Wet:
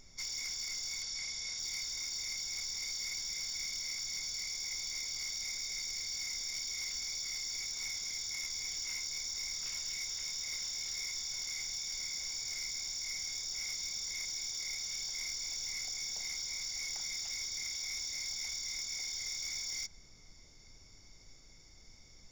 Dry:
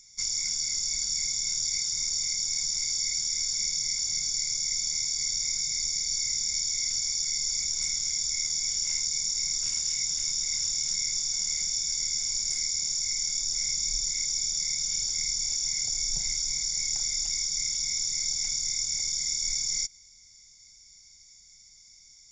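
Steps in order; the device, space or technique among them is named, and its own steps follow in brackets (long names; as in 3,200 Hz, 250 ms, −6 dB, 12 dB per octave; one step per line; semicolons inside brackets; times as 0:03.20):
aircraft cabin announcement (band-pass filter 480–3,700 Hz; soft clipping −34 dBFS, distortion −15 dB; brown noise bed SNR 18 dB)
0:01.02–0:01.59: low-pass filter 7,600 Hz 12 dB per octave
level +1 dB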